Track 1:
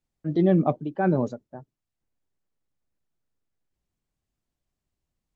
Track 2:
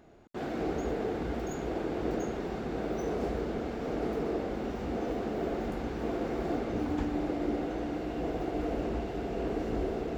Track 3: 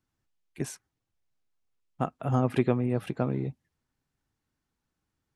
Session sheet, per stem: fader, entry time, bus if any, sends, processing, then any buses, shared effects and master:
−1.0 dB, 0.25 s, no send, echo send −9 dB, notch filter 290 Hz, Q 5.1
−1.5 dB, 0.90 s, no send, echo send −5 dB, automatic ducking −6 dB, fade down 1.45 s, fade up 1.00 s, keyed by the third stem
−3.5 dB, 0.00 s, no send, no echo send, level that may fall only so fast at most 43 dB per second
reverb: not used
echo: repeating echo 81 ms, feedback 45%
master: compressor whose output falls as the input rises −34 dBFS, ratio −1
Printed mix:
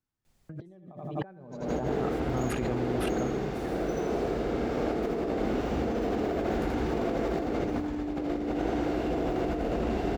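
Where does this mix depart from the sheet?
stem 1 −1.0 dB → +8.5 dB
stem 3 −3.5 dB → −14.0 dB

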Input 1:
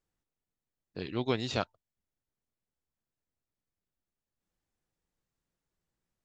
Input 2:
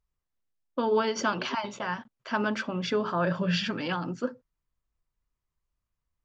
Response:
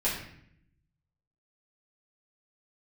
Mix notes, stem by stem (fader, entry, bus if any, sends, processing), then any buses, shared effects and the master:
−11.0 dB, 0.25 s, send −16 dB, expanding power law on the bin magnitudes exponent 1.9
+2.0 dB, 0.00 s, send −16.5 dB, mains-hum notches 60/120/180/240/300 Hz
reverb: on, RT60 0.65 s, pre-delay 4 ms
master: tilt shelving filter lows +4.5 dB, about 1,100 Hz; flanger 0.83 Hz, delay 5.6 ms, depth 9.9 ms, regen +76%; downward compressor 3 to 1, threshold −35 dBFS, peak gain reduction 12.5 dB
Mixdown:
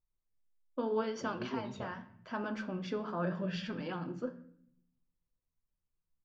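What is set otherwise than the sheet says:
stem 2 +2.0 dB → −7.0 dB
master: missing downward compressor 3 to 1, threshold −35 dBFS, peak gain reduction 12.5 dB

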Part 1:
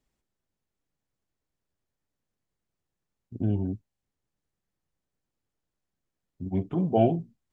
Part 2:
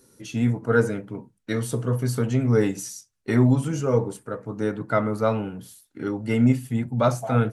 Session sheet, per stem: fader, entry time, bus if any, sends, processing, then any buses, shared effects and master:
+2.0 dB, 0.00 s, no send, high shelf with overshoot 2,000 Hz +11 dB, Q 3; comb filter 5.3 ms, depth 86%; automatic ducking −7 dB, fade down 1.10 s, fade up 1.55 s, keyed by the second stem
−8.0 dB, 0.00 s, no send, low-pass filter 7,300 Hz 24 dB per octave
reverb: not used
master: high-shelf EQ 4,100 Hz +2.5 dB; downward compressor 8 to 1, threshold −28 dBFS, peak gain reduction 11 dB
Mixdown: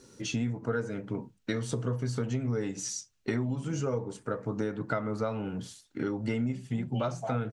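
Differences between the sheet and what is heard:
stem 1 +2.0 dB → −4.5 dB
stem 2 −8.0 dB → +3.0 dB

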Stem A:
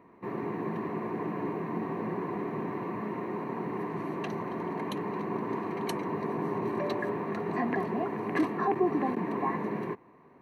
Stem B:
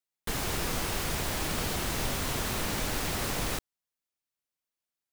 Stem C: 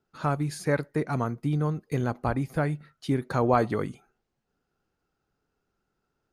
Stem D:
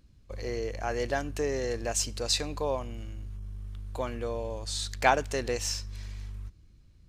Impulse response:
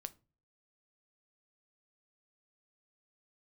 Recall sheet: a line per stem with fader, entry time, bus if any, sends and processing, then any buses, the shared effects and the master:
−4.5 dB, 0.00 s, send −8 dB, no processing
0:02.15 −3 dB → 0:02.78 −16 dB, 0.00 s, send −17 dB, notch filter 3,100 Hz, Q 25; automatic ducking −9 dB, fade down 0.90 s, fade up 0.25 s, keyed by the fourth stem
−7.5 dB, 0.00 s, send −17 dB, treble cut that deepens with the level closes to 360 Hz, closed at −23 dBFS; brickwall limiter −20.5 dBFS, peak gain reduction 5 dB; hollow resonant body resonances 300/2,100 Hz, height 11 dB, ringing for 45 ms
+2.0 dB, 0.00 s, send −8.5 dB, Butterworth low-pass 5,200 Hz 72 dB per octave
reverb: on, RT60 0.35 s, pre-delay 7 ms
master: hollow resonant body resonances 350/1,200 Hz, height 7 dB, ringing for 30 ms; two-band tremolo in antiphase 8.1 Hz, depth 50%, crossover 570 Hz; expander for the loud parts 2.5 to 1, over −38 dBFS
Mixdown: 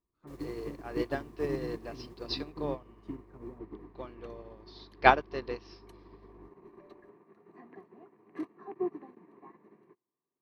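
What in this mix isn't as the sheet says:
stem B −3.0 dB → −9.5 dB
master: missing two-band tremolo in antiphase 8.1 Hz, depth 50%, crossover 570 Hz

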